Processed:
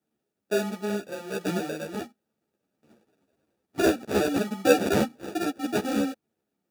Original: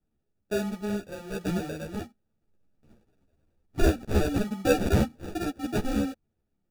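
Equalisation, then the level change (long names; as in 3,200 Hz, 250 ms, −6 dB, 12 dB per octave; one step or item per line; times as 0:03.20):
high-pass filter 240 Hz 12 dB per octave
+4.0 dB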